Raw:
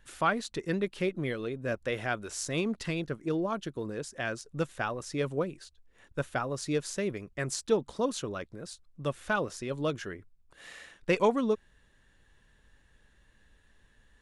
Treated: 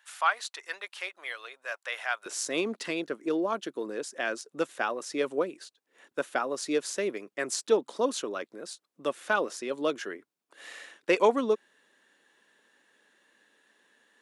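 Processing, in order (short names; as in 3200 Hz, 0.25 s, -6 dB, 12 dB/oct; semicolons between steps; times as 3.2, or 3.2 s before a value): HPF 790 Hz 24 dB/oct, from 2.26 s 270 Hz; gain +3 dB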